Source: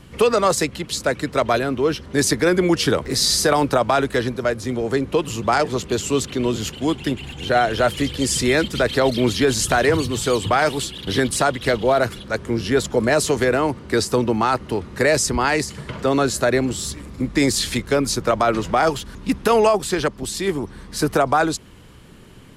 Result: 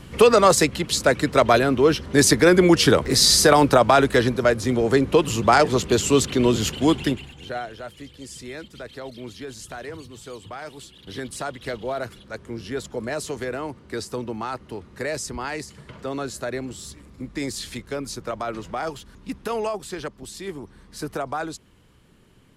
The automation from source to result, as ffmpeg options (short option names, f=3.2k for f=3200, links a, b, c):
-af "volume=10dB,afade=t=out:st=6.99:d=0.29:silence=0.266073,afade=t=out:st=7.28:d=0.51:silence=0.334965,afade=t=in:st=10.64:d=0.96:silence=0.421697"